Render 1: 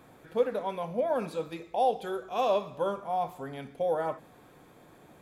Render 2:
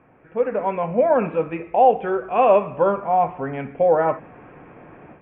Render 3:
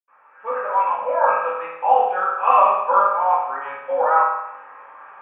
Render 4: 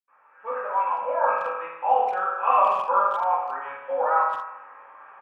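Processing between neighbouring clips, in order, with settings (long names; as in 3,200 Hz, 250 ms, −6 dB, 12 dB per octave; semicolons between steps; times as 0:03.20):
Butterworth low-pass 2,800 Hz 72 dB per octave; automatic gain control gain up to 12 dB
sub-octave generator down 1 octave, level +1 dB; high-pass with resonance 1,100 Hz, resonance Q 8.5; convolution reverb RT60 0.85 s, pre-delay 77 ms; level −3 dB
far-end echo of a speakerphone 170 ms, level −12 dB; level −5 dB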